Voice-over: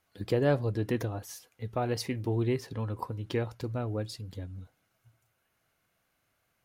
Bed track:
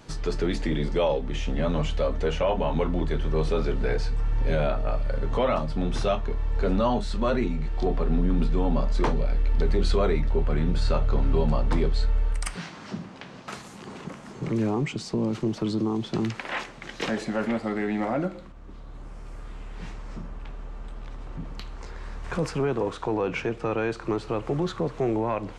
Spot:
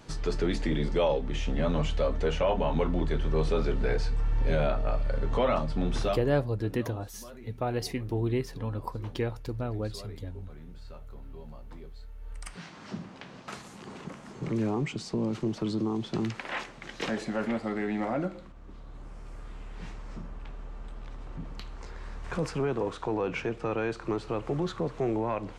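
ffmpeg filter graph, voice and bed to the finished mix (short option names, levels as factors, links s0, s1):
-filter_complex "[0:a]adelay=5850,volume=1[s0];[1:a]volume=7.08,afade=t=out:st=5.96:d=0.5:silence=0.0944061,afade=t=in:st=12.18:d=0.77:silence=0.112202[s1];[s0][s1]amix=inputs=2:normalize=0"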